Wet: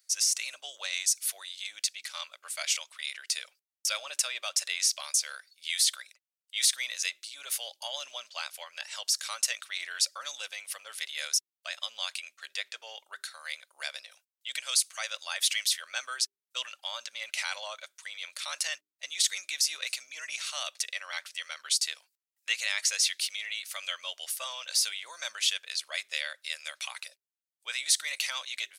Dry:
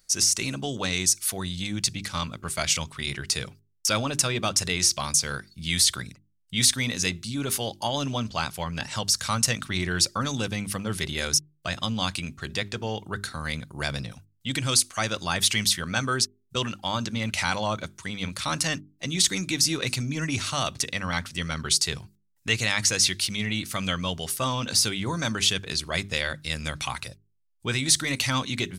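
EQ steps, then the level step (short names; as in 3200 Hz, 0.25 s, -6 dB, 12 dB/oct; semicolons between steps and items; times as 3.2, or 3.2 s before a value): resonant high-pass 580 Hz, resonance Q 4.9; differentiator; bell 2100 Hz +13.5 dB 2.6 oct; -8.5 dB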